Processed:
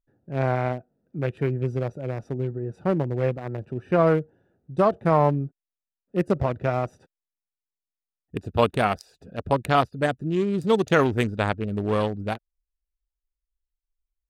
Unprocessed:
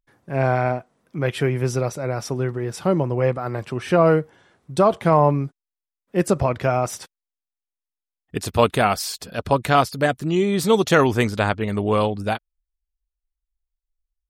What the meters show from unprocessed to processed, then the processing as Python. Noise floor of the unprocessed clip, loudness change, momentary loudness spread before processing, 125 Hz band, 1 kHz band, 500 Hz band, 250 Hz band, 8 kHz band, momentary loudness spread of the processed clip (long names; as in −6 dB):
below −85 dBFS, −4.0 dB, 12 LU, −3.0 dB, −4.5 dB, −4.0 dB, −3.5 dB, below −15 dB, 13 LU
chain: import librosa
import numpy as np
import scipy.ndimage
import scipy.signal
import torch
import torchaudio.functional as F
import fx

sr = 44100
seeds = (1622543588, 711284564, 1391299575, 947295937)

y = fx.wiener(x, sr, points=41)
y = y * 10.0 ** (-3.0 / 20.0)